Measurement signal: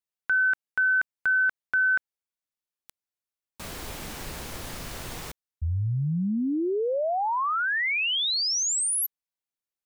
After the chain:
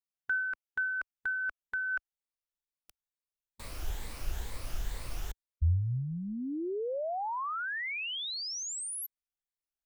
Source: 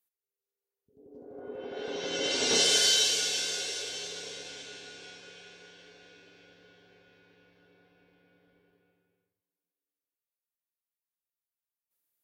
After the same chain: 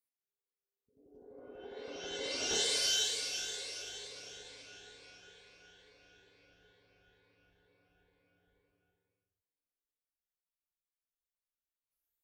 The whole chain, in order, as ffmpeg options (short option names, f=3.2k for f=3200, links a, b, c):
-af "afftfilt=real='re*pow(10,7/40*sin(2*PI*(0.97*log(max(b,1)*sr/1024/100)/log(2)-(2.2)*(pts-256)/sr)))':imag='im*pow(10,7/40*sin(2*PI*(0.97*log(max(b,1)*sr/1024/100)/log(2)-(2.2)*(pts-256)/sr)))':win_size=1024:overlap=0.75,asubboost=boost=8.5:cutoff=62,volume=-8.5dB"